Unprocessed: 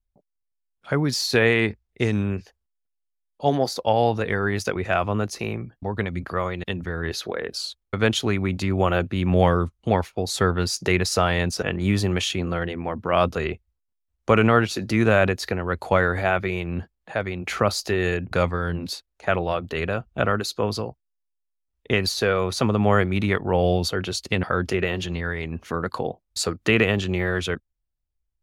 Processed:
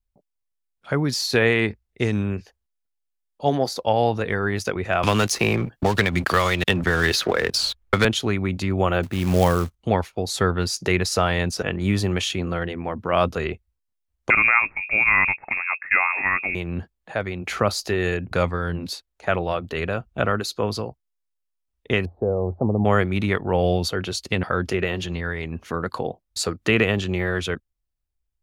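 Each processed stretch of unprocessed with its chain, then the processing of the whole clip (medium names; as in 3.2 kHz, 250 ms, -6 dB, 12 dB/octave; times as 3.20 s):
5.03–8.05 s: tilt shelf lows -3 dB, about 810 Hz + waveshaping leveller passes 2 + three bands compressed up and down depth 100%
9.03–9.75 s: upward compressor, threshold -29 dBFS + short-mantissa float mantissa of 2-bit
14.30–16.55 s: distance through air 230 m + frequency inversion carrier 2.6 kHz
22.05–22.85 s: Chebyshev low-pass 820 Hz, order 4 + peaking EQ 87 Hz +6.5 dB 0.29 oct
whole clip: none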